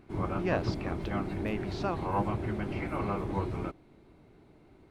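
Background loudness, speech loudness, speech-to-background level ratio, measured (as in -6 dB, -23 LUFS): -34.0 LUFS, -36.5 LUFS, -2.5 dB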